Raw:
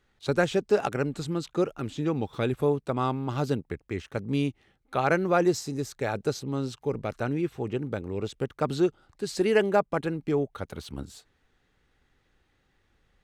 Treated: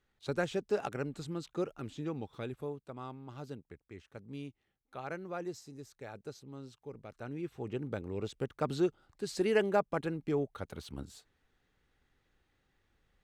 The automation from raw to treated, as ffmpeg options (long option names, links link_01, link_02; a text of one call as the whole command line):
ffmpeg -i in.wav -af "volume=2dB,afade=type=out:start_time=1.88:duration=0.92:silence=0.398107,afade=type=in:start_time=7.12:duration=0.79:silence=0.281838" out.wav